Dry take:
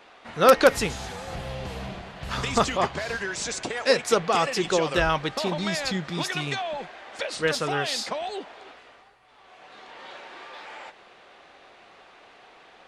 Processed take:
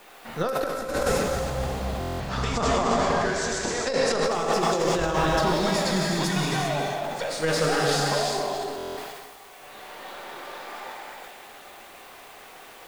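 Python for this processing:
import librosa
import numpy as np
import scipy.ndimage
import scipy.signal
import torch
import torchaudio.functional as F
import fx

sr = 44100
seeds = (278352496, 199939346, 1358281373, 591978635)

y = np.where(x < 0.0, 10.0 ** (-3.0 / 20.0) * x, x)
y = fx.quant_dither(y, sr, seeds[0], bits=10, dither='triangular')
y = fx.lowpass(y, sr, hz=7300.0, slope=12, at=(2.04, 4.23))
y = fx.echo_feedback(y, sr, ms=271, feedback_pct=39, wet_db=-11.5)
y = fx.rev_gated(y, sr, seeds[1], gate_ms=430, shape='flat', drr_db=-2.0)
y = fx.over_compress(y, sr, threshold_db=-22.0, ratio=-0.5)
y = fx.dynamic_eq(y, sr, hz=2600.0, q=1.0, threshold_db=-44.0, ratio=4.0, max_db=-7)
y = fx.buffer_glitch(y, sr, at_s=(1.99, 8.76), block=1024, repeats=8)
y = fx.sustainer(y, sr, db_per_s=33.0)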